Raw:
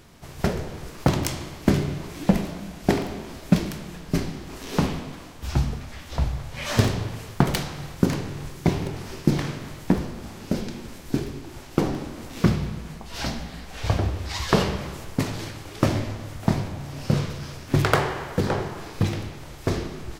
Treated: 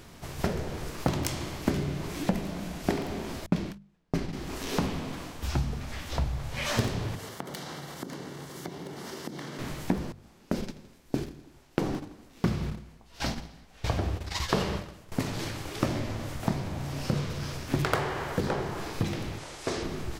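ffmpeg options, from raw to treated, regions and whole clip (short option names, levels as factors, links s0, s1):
-filter_complex "[0:a]asettb=1/sr,asplit=3[s0][s1][s2];[s0]atrim=end=3.464[s3];[s1]atrim=start=3.46:end=4.33,asetpts=PTS-STARTPTS,afade=t=in:d=0.004:c=qsin,afade=t=out:st=0.866:d=0.004:c=qsin,agate=range=0.0178:threshold=0.0282:ratio=16:release=100:detection=peak,highshelf=f=6900:g=-10[s4];[s2]atrim=start=4.326[s5];[s3][s4]acrossfade=d=0.004:c1=hsin:c2=qsin[s6];[s6][s5]acrossfade=d=0.004:c1=qsin:c2=hsin,asettb=1/sr,asplit=3[s7][s8][s9];[s7]atrim=end=7.154[s10];[s8]atrim=start=7.15:end=9.59,asetpts=PTS-STARTPTS,afade=t=in:d=0.004:c=qsin,afade=t=out:st=2.436:d=0.004:c=qsin,acompressor=threshold=0.02:ratio=8:attack=3.2:release=140:knee=1:detection=peak,highpass=180,bandreject=f=2500:w=5.8[s11];[s9]atrim=start=9.586[s12];[s10][s11]acrossfade=d=0.004:c1=hsin:c2=qsin[s13];[s13][s12]acrossfade=d=0.004:c1=qsin:c2=hsin,asettb=1/sr,asplit=3[s14][s15][s16];[s14]atrim=end=10.124[s17];[s15]atrim=start=10.12:end=15.12,asetpts=PTS-STARTPTS,afade=t=in:d=0.004:c=qsin,afade=t=out:st=4.996:d=0.004:c=qsin,agate=range=0.112:threshold=0.0282:ratio=16:release=100:detection=peak,aecho=1:1:83|166|249|332:0.106|0.0561|0.0298|0.0158,atrim=end_sample=220500[s18];[s16]atrim=start=15.116[s19];[s17][s18]acrossfade=d=0.004:c1=hsin:c2=qsin[s20];[s20][s19]acrossfade=d=0.004:c1=qsin:c2=hsin,asettb=1/sr,asplit=3[s21][s22][s23];[s21]atrim=end=19.384[s24];[s22]atrim=start=19.38:end=19.83,asetpts=PTS-STARTPTS,afade=t=in:d=0.004:c=qsin,afade=t=out:st=0.446:d=0.004:c=qsin,lowpass=f=10000:w=0.5412,lowpass=f=10000:w=1.3066,bass=f=250:g=-12,treble=f=4000:g=3,asoftclip=type=hard:threshold=0.0891[s25];[s23]atrim=start=19.826[s26];[s24][s25]acrossfade=d=0.004:c1=hsin:c2=qsin[s27];[s27][s26]acrossfade=d=0.004:c1=qsin:c2=hsin,bandreject=f=50:t=h:w=6,bandreject=f=100:t=h:w=6,bandreject=f=150:t=h:w=6,bandreject=f=200:t=h:w=6,acompressor=threshold=0.0251:ratio=2,volume=1.26"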